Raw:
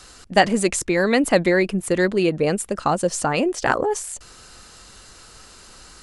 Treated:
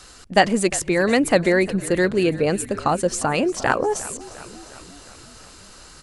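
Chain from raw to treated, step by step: frequency-shifting echo 0.353 s, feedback 64%, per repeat -45 Hz, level -18 dB

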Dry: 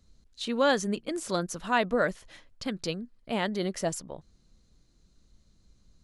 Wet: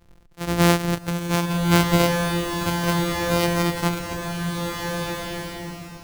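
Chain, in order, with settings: sample sorter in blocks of 256 samples; bloom reverb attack 1.56 s, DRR 1 dB; gain +6.5 dB

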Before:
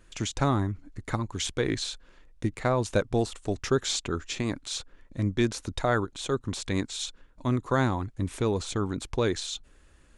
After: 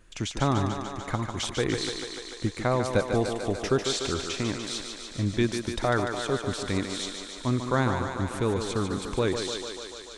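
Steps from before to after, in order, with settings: on a send: thinning echo 0.147 s, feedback 77%, high-pass 210 Hz, level -6 dB; on the sum: dynamic EQ 6900 Hz, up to -5 dB, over -52 dBFS, Q 5.7

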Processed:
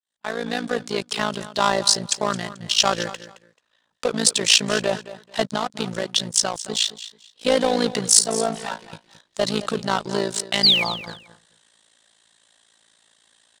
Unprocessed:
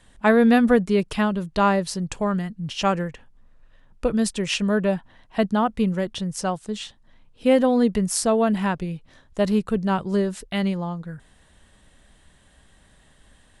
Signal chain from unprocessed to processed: opening faded in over 1.83 s; 8.19–8.93 metallic resonator 110 Hz, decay 0.3 s, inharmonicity 0.002; in parallel at -9.5 dB: wavefolder -23.5 dBFS; on the sum: weighting filter A; AM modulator 56 Hz, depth 75%; 5.54–6.55 compressor 10:1, threshold -28 dBFS, peak gain reduction 8.5 dB; 10.63–10.84 painted sound fall 2100–5000 Hz -30 dBFS; sample leveller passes 2; band shelf 5600 Hz +9.5 dB; on a send: feedback echo 0.218 s, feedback 21%, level -15 dB

